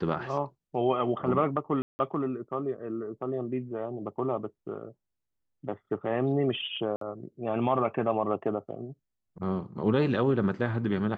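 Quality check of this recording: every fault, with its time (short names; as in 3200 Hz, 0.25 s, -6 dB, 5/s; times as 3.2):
1.82–1.99 gap 0.17 s
6.96–7.01 gap 53 ms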